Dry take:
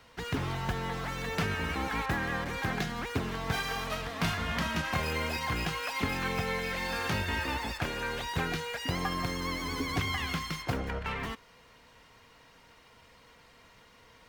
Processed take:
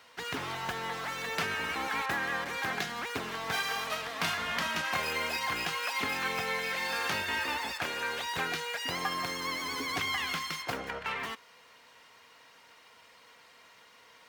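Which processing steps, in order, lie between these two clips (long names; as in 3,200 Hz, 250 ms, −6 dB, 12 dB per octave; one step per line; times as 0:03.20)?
high-pass filter 690 Hz 6 dB per octave
level +2.5 dB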